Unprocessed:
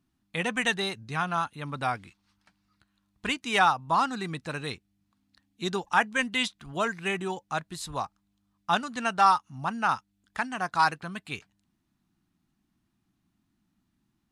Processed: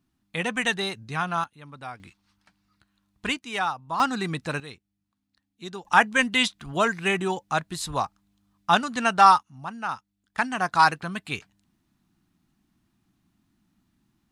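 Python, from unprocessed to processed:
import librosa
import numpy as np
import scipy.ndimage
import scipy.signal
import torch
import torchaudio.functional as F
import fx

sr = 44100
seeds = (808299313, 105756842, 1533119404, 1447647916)

y = fx.gain(x, sr, db=fx.steps((0.0, 1.5), (1.44, -9.0), (2.0, 2.0), (3.39, -5.0), (4.0, 5.0), (4.6, -7.0), (5.85, 5.5), (9.43, -4.5), (10.38, 5.0)))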